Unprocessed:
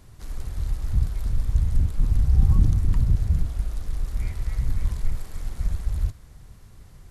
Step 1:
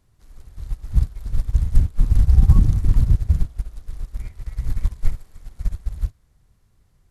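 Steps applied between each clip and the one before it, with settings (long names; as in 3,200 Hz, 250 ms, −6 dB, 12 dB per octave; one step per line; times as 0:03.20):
boost into a limiter +9.5 dB
expander for the loud parts 2.5 to 1, over −19 dBFS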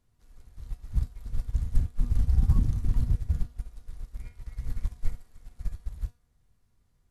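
tuned comb filter 240 Hz, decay 0.34 s, harmonics all, mix 70%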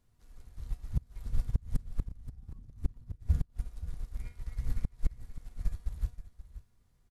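gate with flip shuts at −16 dBFS, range −28 dB
single-tap delay 528 ms −14 dB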